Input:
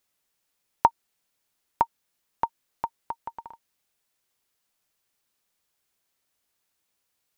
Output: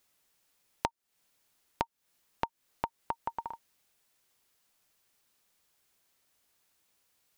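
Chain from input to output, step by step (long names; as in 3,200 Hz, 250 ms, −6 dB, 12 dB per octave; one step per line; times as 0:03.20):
downward compressor 16 to 1, threshold −33 dBFS, peak gain reduction 21 dB
level +4 dB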